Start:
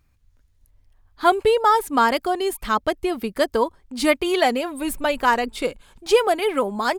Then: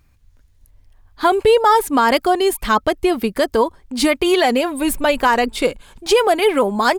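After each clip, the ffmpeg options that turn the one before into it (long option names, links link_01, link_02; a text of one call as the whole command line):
ffmpeg -i in.wav -af "bandreject=frequency=1300:width=26,alimiter=level_in=11.5dB:limit=-1dB:release=50:level=0:latency=1,volume=-4.5dB" out.wav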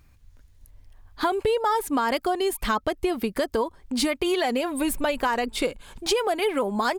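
ffmpeg -i in.wav -af "acompressor=threshold=-24dB:ratio=3" out.wav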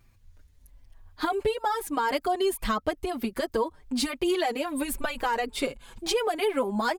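ffmpeg -i in.wav -filter_complex "[0:a]asplit=2[link_01][link_02];[link_02]adelay=5.5,afreqshift=-1.2[link_03];[link_01][link_03]amix=inputs=2:normalize=1" out.wav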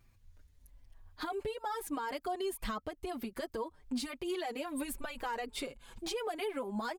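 ffmpeg -i in.wav -af "alimiter=limit=-23.5dB:level=0:latency=1:release=280,volume=-5dB" out.wav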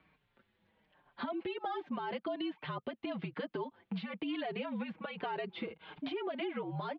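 ffmpeg -i in.wav -filter_complex "[0:a]acrossover=split=1000|2700[link_01][link_02][link_03];[link_01]acompressor=threshold=-44dB:ratio=4[link_04];[link_02]acompressor=threshold=-56dB:ratio=4[link_05];[link_03]acompressor=threshold=-53dB:ratio=4[link_06];[link_04][link_05][link_06]amix=inputs=3:normalize=0,highpass=frequency=190:width_type=q:width=0.5412,highpass=frequency=190:width_type=q:width=1.307,lowpass=frequency=3500:width_type=q:width=0.5176,lowpass=frequency=3500:width_type=q:width=0.7071,lowpass=frequency=3500:width_type=q:width=1.932,afreqshift=-60,volume=7dB" out.wav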